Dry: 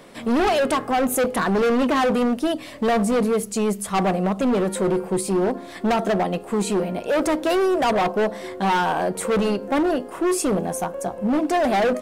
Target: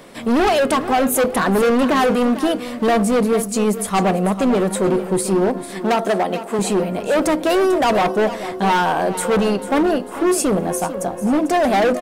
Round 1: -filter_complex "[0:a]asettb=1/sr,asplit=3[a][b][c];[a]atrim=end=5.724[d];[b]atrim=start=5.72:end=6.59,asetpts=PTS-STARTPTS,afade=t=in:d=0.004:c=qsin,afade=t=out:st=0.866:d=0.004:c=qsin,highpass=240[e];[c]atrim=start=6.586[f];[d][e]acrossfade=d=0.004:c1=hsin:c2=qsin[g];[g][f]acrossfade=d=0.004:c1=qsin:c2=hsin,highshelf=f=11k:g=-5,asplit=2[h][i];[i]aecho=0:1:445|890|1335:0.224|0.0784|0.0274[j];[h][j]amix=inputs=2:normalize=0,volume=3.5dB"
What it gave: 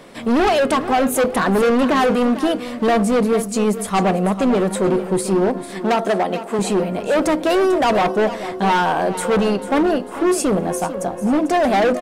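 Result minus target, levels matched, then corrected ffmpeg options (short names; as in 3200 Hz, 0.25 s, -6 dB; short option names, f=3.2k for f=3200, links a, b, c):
8000 Hz band -2.5 dB
-filter_complex "[0:a]asettb=1/sr,asplit=3[a][b][c];[a]atrim=end=5.724[d];[b]atrim=start=5.72:end=6.59,asetpts=PTS-STARTPTS,afade=t=in:d=0.004:c=qsin,afade=t=out:st=0.866:d=0.004:c=qsin,highpass=240[e];[c]atrim=start=6.586[f];[d][e]acrossfade=d=0.004:c1=hsin:c2=qsin[g];[g][f]acrossfade=d=0.004:c1=qsin:c2=hsin,highshelf=f=11k:g=3.5,asplit=2[h][i];[i]aecho=0:1:445|890|1335:0.224|0.0784|0.0274[j];[h][j]amix=inputs=2:normalize=0,volume=3.5dB"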